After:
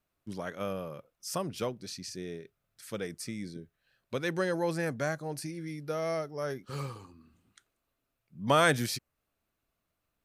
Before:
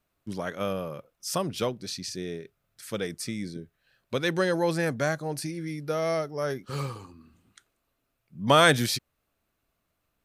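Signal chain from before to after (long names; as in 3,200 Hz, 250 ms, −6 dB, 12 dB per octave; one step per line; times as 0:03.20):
dynamic equaliser 3,600 Hz, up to −5 dB, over −48 dBFS, Q 2.9
level −5 dB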